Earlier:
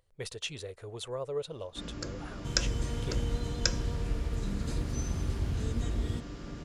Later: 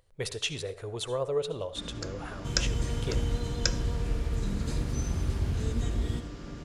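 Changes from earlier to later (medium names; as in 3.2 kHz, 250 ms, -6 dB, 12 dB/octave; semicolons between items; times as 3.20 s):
speech +4.0 dB; reverb: on, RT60 0.40 s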